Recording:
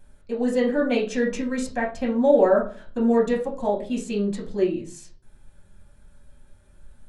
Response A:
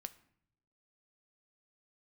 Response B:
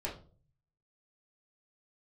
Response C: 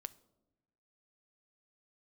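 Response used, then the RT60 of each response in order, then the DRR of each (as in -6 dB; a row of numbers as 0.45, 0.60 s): B; 0.70, 0.40, 1.1 s; 10.5, -5.5, 13.5 dB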